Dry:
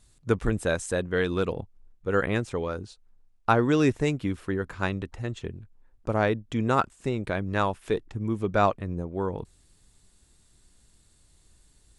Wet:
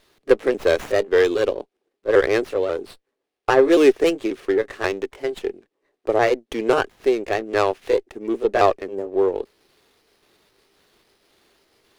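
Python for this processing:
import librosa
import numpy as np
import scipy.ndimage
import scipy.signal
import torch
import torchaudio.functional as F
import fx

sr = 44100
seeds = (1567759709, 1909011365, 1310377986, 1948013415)

y = fx.pitch_trill(x, sr, semitones=2.0, every_ms=269)
y = fx.cabinet(y, sr, low_hz=330.0, low_slope=24, high_hz=9500.0, hz=(400.0, 950.0, 1400.0), db=(7, -8, -7))
y = fx.running_max(y, sr, window=5)
y = y * 10.0 ** (8.5 / 20.0)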